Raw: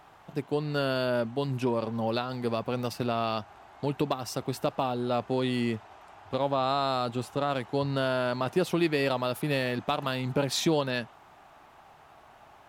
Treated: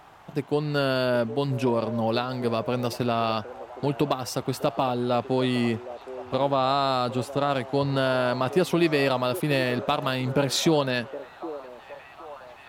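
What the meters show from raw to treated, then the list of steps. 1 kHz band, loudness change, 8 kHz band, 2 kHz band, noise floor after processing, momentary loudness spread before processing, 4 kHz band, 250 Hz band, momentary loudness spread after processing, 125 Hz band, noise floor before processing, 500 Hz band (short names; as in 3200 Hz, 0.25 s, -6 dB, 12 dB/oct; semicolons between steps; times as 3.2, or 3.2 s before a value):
+4.0 dB, +4.0 dB, +4.0 dB, +4.0 dB, -47 dBFS, 6 LU, +4.0 dB, +4.0 dB, 14 LU, +4.0 dB, -55 dBFS, +4.5 dB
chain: delay with a stepping band-pass 0.766 s, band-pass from 470 Hz, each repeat 0.7 oct, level -11.5 dB; gain +4 dB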